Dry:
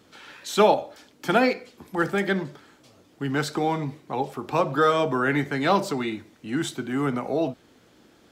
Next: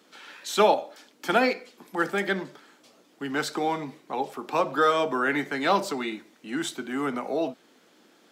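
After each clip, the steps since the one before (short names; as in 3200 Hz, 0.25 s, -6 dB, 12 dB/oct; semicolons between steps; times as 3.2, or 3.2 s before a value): HPF 180 Hz 24 dB/oct; low shelf 450 Hz -5 dB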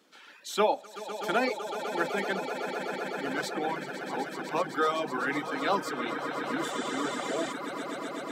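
swelling echo 0.126 s, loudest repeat 8, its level -11 dB; spectral repair 6.68–7.51, 1700–9500 Hz before; reverb removal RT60 0.99 s; gain -5 dB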